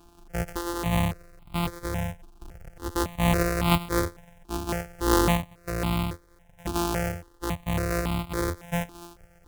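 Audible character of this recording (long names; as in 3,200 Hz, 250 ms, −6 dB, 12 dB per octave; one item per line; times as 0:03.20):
a buzz of ramps at a fixed pitch in blocks of 256 samples
sample-and-hold tremolo
a quantiser's noise floor 12 bits, dither none
notches that jump at a steady rate 3.6 Hz 540–1,700 Hz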